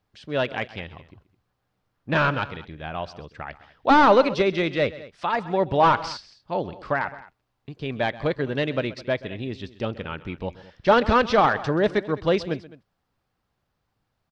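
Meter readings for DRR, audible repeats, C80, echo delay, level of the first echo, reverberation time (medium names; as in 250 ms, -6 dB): no reverb, 2, no reverb, 130 ms, -18.0 dB, no reverb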